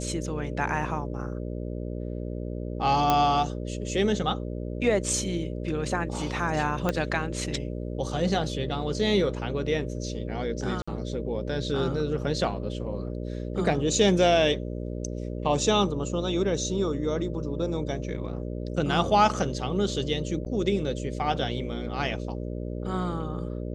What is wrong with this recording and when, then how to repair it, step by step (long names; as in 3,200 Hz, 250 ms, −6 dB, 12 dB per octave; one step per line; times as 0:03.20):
mains buzz 60 Hz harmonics 10 −33 dBFS
0:03.10: click −8 dBFS
0:06.89: click −11 dBFS
0:10.82–0:10.88: drop-out 55 ms
0:20.45–0:20.46: drop-out 8.5 ms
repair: click removal
hum removal 60 Hz, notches 10
repair the gap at 0:10.82, 55 ms
repair the gap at 0:20.45, 8.5 ms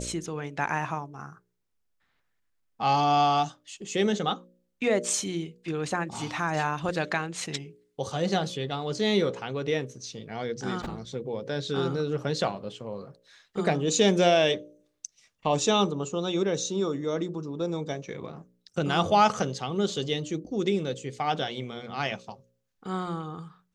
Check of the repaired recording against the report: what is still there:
0:06.89: click